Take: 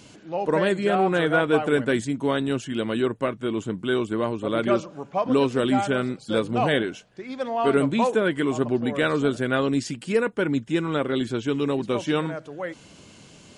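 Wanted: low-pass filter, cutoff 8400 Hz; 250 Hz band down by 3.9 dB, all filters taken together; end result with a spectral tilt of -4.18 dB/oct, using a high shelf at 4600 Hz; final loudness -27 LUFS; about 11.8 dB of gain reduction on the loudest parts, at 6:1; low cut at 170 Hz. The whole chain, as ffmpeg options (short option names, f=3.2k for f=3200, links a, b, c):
-af "highpass=170,lowpass=8.4k,equalizer=f=250:t=o:g=-4,highshelf=f=4.6k:g=8.5,acompressor=threshold=-30dB:ratio=6,volume=7.5dB"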